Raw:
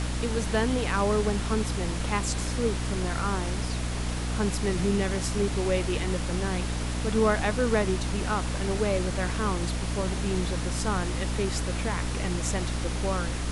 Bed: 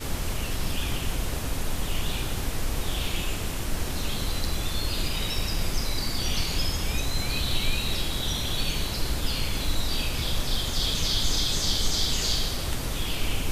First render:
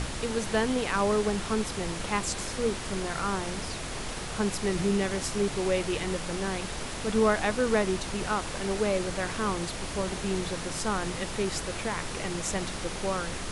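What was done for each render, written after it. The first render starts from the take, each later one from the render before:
hum removal 60 Hz, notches 5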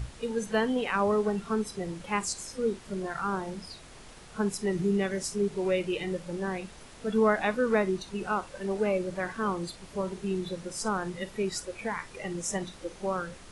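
noise reduction from a noise print 14 dB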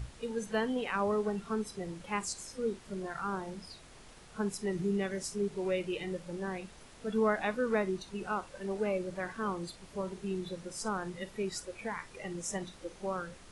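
level −5 dB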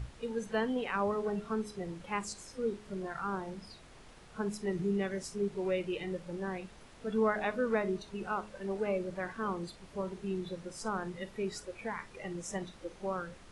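high-shelf EQ 5,200 Hz −7.5 dB
hum removal 209.9 Hz, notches 3

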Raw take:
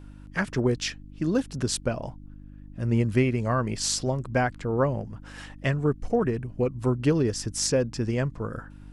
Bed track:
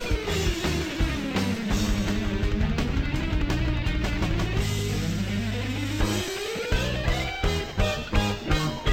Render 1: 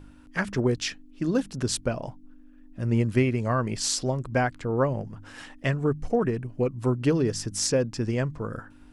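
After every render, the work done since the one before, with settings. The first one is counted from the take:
hum removal 50 Hz, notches 4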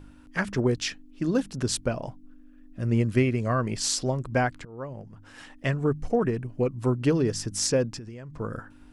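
0:02.09–0:03.63: notch filter 880 Hz, Q 6.5
0:04.65–0:05.80: fade in, from −21.5 dB
0:07.98–0:08.40: downward compressor 12 to 1, threshold −36 dBFS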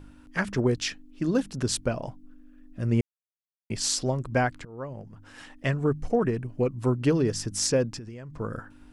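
0:03.01–0:03.70: silence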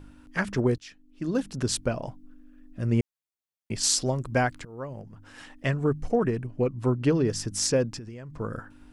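0:00.78–0:01.54: fade in, from −23.5 dB
0:03.83–0:05.02: high-shelf EQ 4,900 Hz +5.5 dB
0:06.46–0:07.30: high-shelf EQ 6,800 Hz −8 dB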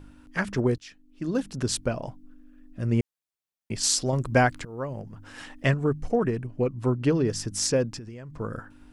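0:04.13–0:05.74: clip gain +4 dB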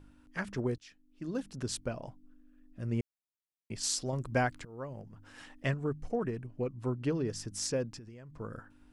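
level −9 dB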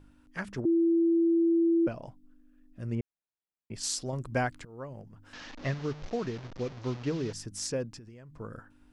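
0:00.65–0:01.87: beep over 334 Hz −21 dBFS
0:02.95–0:03.74: low-pass filter 1,700 Hz 6 dB per octave
0:05.33–0:07.33: linear delta modulator 32 kbit/s, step −39 dBFS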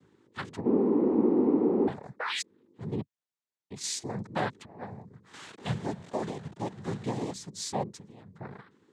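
0:02.19–0:02.42: sound drawn into the spectrogram rise 780–4,800 Hz −33 dBFS
cochlear-implant simulation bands 6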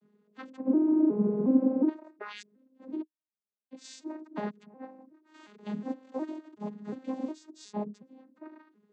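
vocoder with an arpeggio as carrier major triad, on G#3, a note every 364 ms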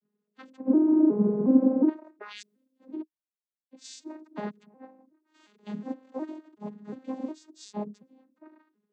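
multiband upward and downward expander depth 40%

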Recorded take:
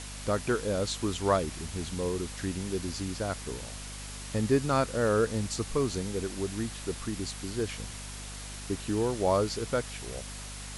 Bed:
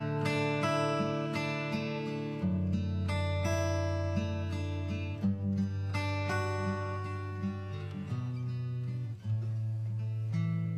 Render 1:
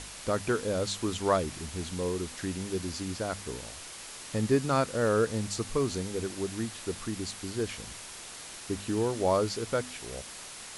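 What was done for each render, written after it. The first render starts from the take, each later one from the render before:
hum removal 50 Hz, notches 5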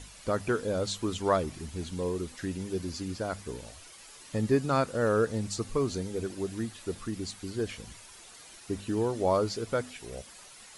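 broadband denoise 10 dB, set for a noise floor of −44 dBFS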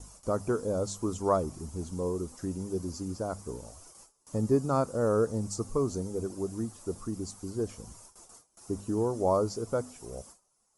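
noise gate with hold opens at −39 dBFS
flat-topped bell 2,600 Hz −15.5 dB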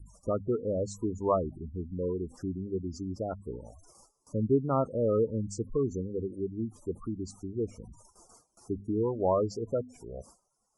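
gate on every frequency bin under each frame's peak −15 dB strong
high-shelf EQ 7,600 Hz −9.5 dB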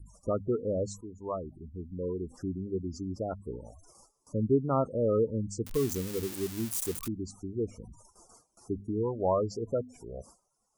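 0:01.01–0:02.47: fade in, from −13.5 dB
0:05.66–0:07.08: spike at every zero crossing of −25 dBFS
0:08.87–0:09.53: dynamic equaliser 320 Hz, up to −3 dB, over −41 dBFS, Q 1.4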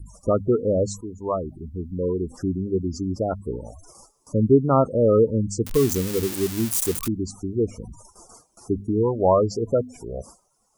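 level +9.5 dB

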